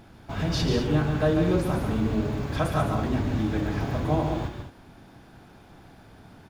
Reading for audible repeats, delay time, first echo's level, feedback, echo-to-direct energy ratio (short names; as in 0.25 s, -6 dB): 2, 0.141 s, -6.0 dB, no steady repeat, -4.5 dB